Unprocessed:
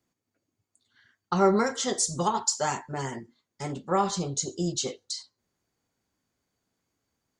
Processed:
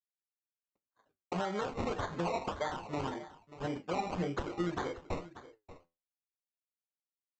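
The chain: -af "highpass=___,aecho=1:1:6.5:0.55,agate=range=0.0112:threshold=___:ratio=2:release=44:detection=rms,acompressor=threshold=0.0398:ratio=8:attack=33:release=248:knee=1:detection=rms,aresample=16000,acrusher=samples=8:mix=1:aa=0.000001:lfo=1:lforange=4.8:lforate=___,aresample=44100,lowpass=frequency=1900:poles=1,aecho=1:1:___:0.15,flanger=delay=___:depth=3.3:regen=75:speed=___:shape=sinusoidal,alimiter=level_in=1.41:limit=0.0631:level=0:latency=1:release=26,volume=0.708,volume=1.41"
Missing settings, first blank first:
240, 0.002, 1.8, 585, 8.5, 1.1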